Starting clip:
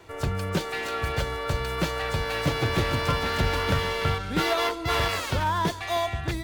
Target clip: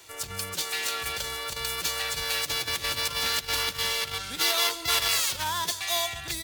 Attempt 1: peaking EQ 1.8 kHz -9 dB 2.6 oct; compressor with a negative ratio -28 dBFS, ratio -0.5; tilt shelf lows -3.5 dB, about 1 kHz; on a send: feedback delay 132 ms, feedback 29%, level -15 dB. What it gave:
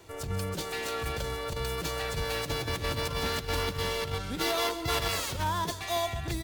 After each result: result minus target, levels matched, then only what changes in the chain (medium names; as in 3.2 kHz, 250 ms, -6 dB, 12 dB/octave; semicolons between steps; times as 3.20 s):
1 kHz band +4.5 dB; echo-to-direct +7 dB
change: tilt shelf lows -13.5 dB, about 1 kHz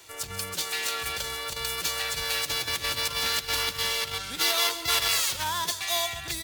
echo-to-direct +7 dB
change: feedback delay 132 ms, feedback 29%, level -22 dB